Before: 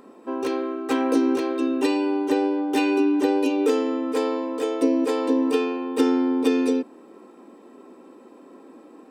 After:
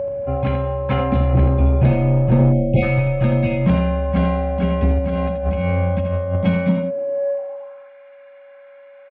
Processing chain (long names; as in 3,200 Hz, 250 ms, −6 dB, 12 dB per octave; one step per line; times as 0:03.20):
single-sideband voice off tune −260 Hz 280–3,200 Hz
0:01.33–0:02.81: tilt shelving filter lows +7 dB
0:04.98–0:06.36: compressor whose output falls as the input rises −29 dBFS, ratio −1
steady tone 560 Hz −26 dBFS
high-pass filter sweep 80 Hz → 1,700 Hz, 0:06.33–0:07.91
soft clipping −12.5 dBFS, distortion −17 dB
single-tap delay 81 ms −7 dB
0:02.53–0:02.83: time-frequency box erased 830–2,100 Hz
level +5.5 dB